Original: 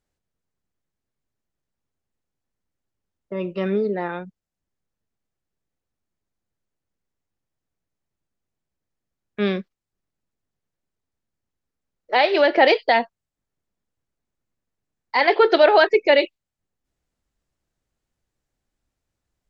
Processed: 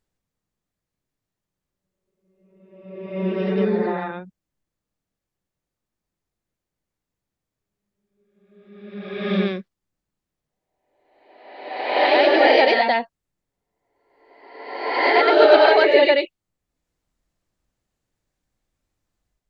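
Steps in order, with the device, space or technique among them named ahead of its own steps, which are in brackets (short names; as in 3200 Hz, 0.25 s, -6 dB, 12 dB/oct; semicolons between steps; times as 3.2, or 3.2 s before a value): reverse reverb (reverse; reverb RT60 1.2 s, pre-delay 85 ms, DRR -3.5 dB; reverse); gain -3 dB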